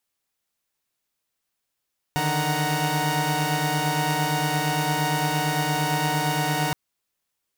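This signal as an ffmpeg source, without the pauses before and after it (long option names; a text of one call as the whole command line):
ffmpeg -f lavfi -i "aevalsrc='0.0562*((2*mod(146.83*t,1)-1)+(2*mod(155.56*t,1)-1)+(2*mod(739.99*t,1)-1)+(2*mod(932.33*t,1)-1))':duration=4.57:sample_rate=44100" out.wav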